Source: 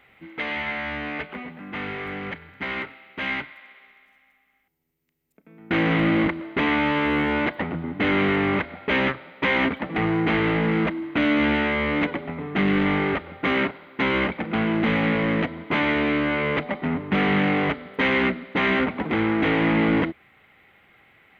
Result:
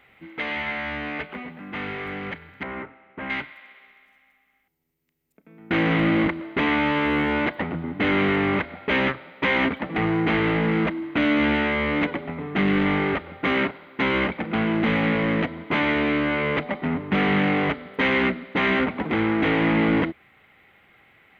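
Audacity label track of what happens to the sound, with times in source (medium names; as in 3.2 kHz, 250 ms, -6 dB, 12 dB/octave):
2.630000	3.300000	low-pass 1.3 kHz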